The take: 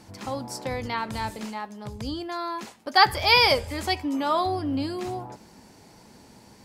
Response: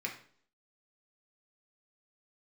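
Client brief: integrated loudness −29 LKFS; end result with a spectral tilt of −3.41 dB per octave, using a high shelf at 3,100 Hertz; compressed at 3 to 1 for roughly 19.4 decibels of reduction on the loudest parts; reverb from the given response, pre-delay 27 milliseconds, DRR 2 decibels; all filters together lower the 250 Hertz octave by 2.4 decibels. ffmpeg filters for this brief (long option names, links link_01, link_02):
-filter_complex "[0:a]equalizer=frequency=250:width_type=o:gain=-3,highshelf=frequency=3100:gain=8,acompressor=threshold=-38dB:ratio=3,asplit=2[link_01][link_02];[1:a]atrim=start_sample=2205,adelay=27[link_03];[link_02][link_03]afir=irnorm=-1:irlink=0,volume=-5dB[link_04];[link_01][link_04]amix=inputs=2:normalize=0,volume=6.5dB"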